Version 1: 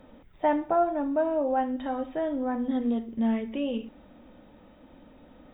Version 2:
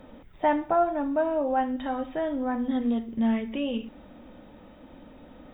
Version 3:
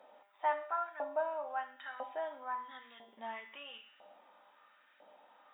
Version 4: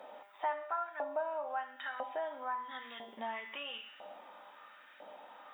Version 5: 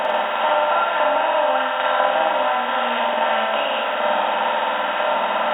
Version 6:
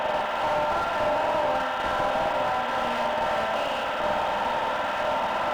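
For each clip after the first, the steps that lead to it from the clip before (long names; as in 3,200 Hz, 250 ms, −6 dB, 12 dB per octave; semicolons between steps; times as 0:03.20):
dynamic equaliser 420 Hz, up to −5 dB, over −38 dBFS, Q 0.72; level +4 dB
tuned comb filter 200 Hz, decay 0.8 s, harmonics all, mix 80%; auto-filter high-pass saw up 1 Hz 670–1,700 Hz; level +2 dB
downward compressor 2 to 1, threshold −50 dBFS, peak gain reduction 12.5 dB; level +9 dB
compressor on every frequency bin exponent 0.2; flutter between parallel walls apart 8.6 metres, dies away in 0.96 s; level +8.5 dB
convolution reverb RT60 2.6 s, pre-delay 120 ms, DRR 13.5 dB; slew-rate limiting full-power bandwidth 130 Hz; level −5 dB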